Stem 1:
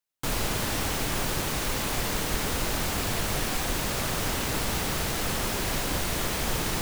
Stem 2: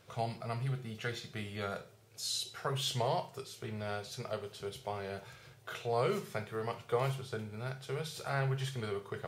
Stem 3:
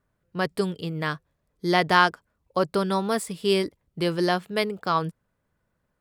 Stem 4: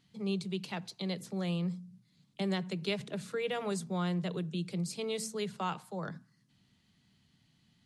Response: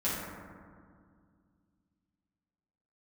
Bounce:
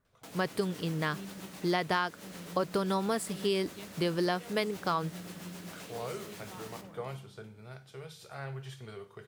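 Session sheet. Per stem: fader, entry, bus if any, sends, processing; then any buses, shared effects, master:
-18.5 dB, 0.00 s, send -11 dB, HPF 170 Hz 12 dB/oct; rotary speaker horn 7.5 Hz
-7.5 dB, 0.05 s, no send, auto duck -21 dB, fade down 0.35 s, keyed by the third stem
-2.5 dB, 0.00 s, no send, dry
-16.5 dB, 0.90 s, send -19 dB, dry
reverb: on, RT60 2.1 s, pre-delay 5 ms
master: compressor 6:1, threshold -26 dBFS, peak gain reduction 11 dB

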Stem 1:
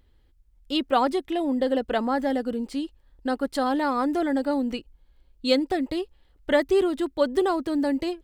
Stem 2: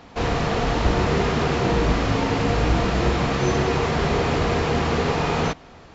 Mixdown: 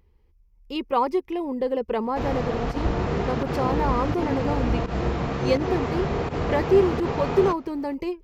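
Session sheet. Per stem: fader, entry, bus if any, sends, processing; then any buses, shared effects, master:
0.0 dB, 0.00 s, no send, ripple EQ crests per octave 0.81, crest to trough 11 dB
-4.0 dB, 2.00 s, no send, pump 84 bpm, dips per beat 1, -16 dB, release 96 ms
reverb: off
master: high shelf 2000 Hz -9 dB; wow and flutter 21 cents

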